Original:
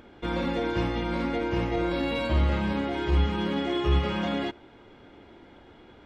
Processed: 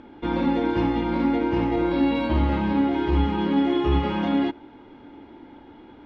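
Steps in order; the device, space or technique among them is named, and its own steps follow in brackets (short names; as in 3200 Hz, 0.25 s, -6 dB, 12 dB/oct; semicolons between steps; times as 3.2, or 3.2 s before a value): inside a cardboard box (LPF 4400 Hz 12 dB/oct; small resonant body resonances 280/870 Hz, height 11 dB, ringing for 35 ms)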